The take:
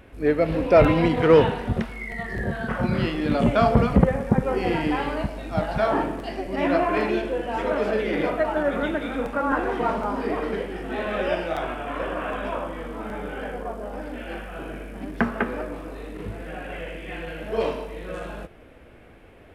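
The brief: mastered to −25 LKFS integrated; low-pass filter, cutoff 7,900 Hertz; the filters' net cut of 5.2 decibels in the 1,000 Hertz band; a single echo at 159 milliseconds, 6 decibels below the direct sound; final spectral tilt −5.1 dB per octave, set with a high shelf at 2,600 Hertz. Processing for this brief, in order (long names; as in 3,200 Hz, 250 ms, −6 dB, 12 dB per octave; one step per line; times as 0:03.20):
low-pass filter 7,900 Hz
parametric band 1,000 Hz −7 dB
high-shelf EQ 2,600 Hz −4 dB
single-tap delay 159 ms −6 dB
level +0.5 dB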